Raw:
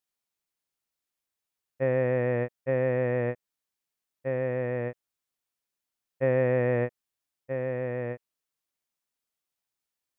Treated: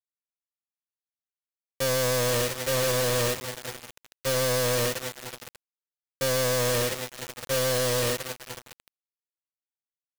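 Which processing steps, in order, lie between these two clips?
peak hold with a decay on every bin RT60 0.31 s
brickwall limiter −21.5 dBFS, peak gain reduction 7.5 dB
on a send: feedback delay with all-pass diffusion 532 ms, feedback 49%, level −12 dB
on the sum: log-companded quantiser 2 bits
high-shelf EQ 2,500 Hz +11 dB
expander for the loud parts 2.5 to 1, over −35 dBFS

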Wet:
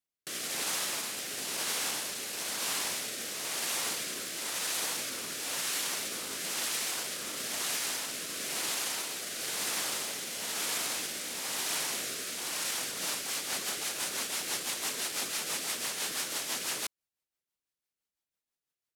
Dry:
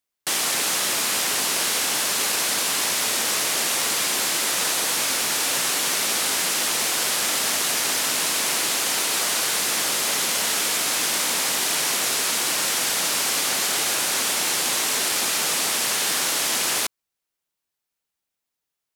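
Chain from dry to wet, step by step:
brickwall limiter −17.5 dBFS, peak gain reduction 7.5 dB
rotating-speaker cabinet horn 1 Hz, later 6 Hz, at 0:12.59
level −5 dB

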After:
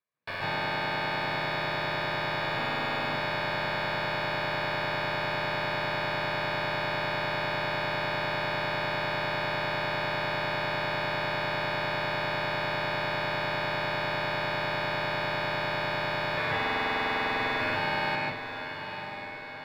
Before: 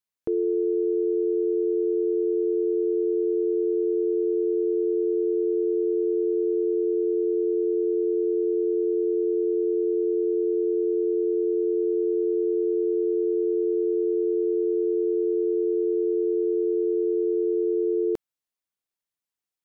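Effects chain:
0:02.42–0:03.00: expanding power law on the bin magnitudes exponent 2.9
0:16.37–0:17.61: notch filter 460 Hz, Q 14
wrap-around overflow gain 30 dB
high-frequency loss of the air 450 metres
feedback delay with all-pass diffusion 973 ms, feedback 55%, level −9.5 dB
convolution reverb RT60 0.40 s, pre-delay 129 ms, DRR −2.5 dB
level +4.5 dB

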